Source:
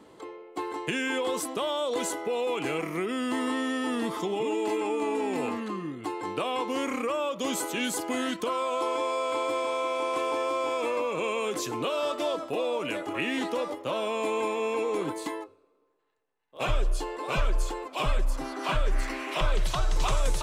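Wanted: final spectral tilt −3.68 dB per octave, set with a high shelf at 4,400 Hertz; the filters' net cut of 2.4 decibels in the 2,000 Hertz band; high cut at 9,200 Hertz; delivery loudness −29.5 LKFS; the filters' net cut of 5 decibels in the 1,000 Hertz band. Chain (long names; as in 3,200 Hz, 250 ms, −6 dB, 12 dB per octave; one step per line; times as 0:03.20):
low-pass filter 9,200 Hz
parametric band 1,000 Hz −5.5 dB
parametric band 2,000 Hz −3.5 dB
high-shelf EQ 4,400 Hz +7 dB
level +1.5 dB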